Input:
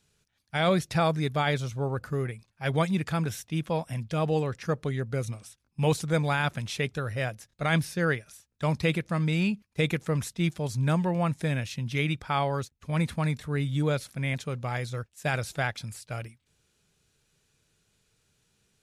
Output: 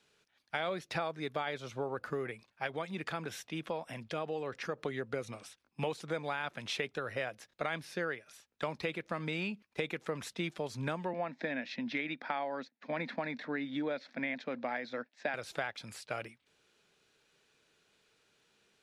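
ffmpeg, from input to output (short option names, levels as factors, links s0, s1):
-filter_complex "[0:a]asplit=3[s0][s1][s2];[s0]afade=t=out:st=2.66:d=0.02[s3];[s1]acompressor=threshold=0.00891:ratio=1.5:attack=3.2:release=140:knee=1:detection=peak,afade=t=in:st=2.66:d=0.02,afade=t=out:st=4.77:d=0.02[s4];[s2]afade=t=in:st=4.77:d=0.02[s5];[s3][s4][s5]amix=inputs=3:normalize=0,asettb=1/sr,asplit=3[s6][s7][s8];[s6]atrim=end=11.134[s9];[s7]atrim=start=11.13:end=15.34,asetpts=PTS-STARTPTS,afade=t=in:d=0.004:c=qsin,afade=t=out:st=4.206:d=0.004:c=qsin,highpass=f=190:w=0.5412,highpass=f=190:w=1.3066,equalizer=f=250:t=q:w=4:g=9,equalizer=f=400:t=q:w=4:g=-8,equalizer=f=650:t=q:w=4:g=3,equalizer=f=1200:t=q:w=4:g=-7,equalizer=f=1800:t=q:w=4:g=5,equalizer=f=3000:t=q:w=4:g=-8,lowpass=f=4800:w=0.5412,lowpass=f=4800:w=1.3066[s10];[s8]atrim=start=15.336[s11];[s9][s10]acrossfade=d=0.004:c1=hsin:c2=qsin[s12];[s12][s11]acrossfade=d=0.004:c1=qsin:c2=hsin,acrossover=split=250 4600:gain=0.112 1 0.251[s13][s14][s15];[s13][s14][s15]amix=inputs=3:normalize=0,acompressor=threshold=0.0141:ratio=6,volume=1.58"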